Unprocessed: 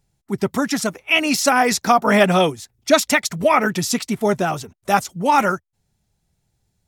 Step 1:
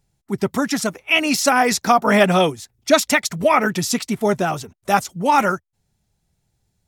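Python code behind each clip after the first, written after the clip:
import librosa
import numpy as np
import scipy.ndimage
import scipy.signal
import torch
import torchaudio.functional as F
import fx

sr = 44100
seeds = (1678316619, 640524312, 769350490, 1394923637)

y = x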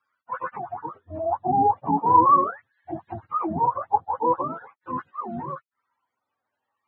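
y = fx.octave_mirror(x, sr, pivot_hz=450.0)
y = fx.filter_lfo_bandpass(y, sr, shape='sine', hz=0.43, low_hz=760.0, high_hz=1600.0, q=3.2)
y = y * 10.0 ** (7.5 / 20.0)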